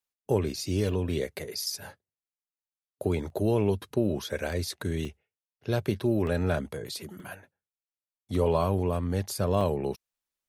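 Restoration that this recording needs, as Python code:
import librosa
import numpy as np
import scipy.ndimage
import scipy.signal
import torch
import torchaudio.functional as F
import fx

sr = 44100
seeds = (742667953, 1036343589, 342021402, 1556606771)

y = fx.fix_interpolate(x, sr, at_s=(0.89, 3.3, 5.05, 6.27, 7.2, 7.73, 9.61), length_ms=1.3)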